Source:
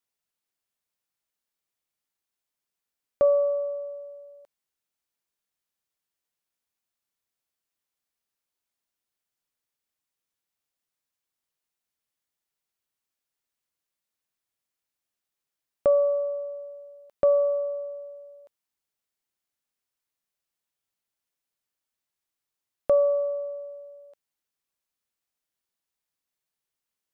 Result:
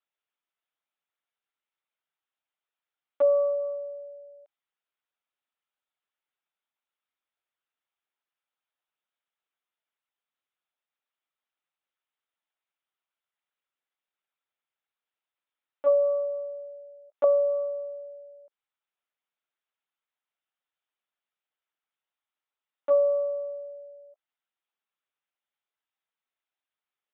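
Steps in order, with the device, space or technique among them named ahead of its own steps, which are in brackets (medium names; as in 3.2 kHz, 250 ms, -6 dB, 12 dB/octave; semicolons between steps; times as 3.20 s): talking toy (LPC vocoder at 8 kHz pitch kept; high-pass 420 Hz 12 dB/octave; peaking EQ 1.3 kHz +4.5 dB 0.22 oct)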